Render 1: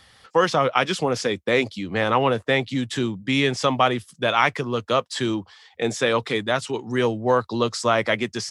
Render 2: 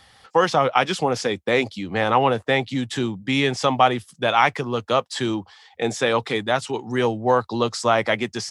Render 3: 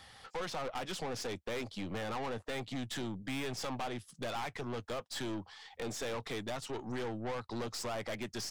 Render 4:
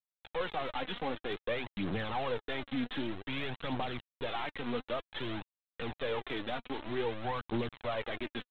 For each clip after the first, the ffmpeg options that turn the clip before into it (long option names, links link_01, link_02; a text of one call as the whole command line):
ffmpeg -i in.wav -af "equalizer=frequency=800:width=4.4:gain=6.5" out.wav
ffmpeg -i in.wav -af "acompressor=threshold=-34dB:ratio=2,aeval=exprs='(tanh(50.1*val(0)+0.5)-tanh(0.5))/50.1':channel_layout=same,volume=-1dB" out.wav
ffmpeg -i in.wav -af "aresample=8000,acrusher=bits=6:mix=0:aa=0.000001,aresample=44100,aphaser=in_gain=1:out_gain=1:delay=4.3:decay=0.48:speed=0.53:type=triangular" out.wav